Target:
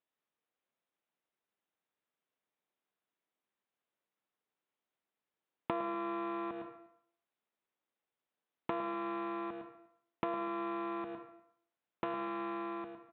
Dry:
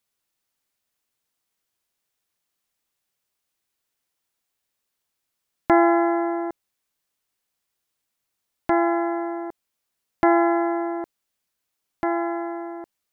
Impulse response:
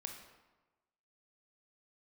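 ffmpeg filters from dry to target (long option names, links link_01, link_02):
-filter_complex "[0:a]acrossover=split=480[link_01][link_02];[link_02]acompressor=threshold=-27dB:ratio=2.5[link_03];[link_01][link_03]amix=inputs=2:normalize=0,aresample=8000,aeval=exprs='abs(val(0))':channel_layout=same,aresample=44100,highshelf=frequency=2000:gain=-11,asplit=2[link_04][link_05];[1:a]atrim=start_sample=2205,asetrate=83790,aresample=44100,adelay=108[link_06];[link_05][link_06]afir=irnorm=-1:irlink=0,volume=2dB[link_07];[link_04][link_07]amix=inputs=2:normalize=0,acompressor=threshold=-31dB:ratio=4,highpass=200,asplit=2[link_08][link_09];[link_09]adelay=244.9,volume=-23dB,highshelf=frequency=4000:gain=-5.51[link_10];[link_08][link_10]amix=inputs=2:normalize=0,volume=1dB"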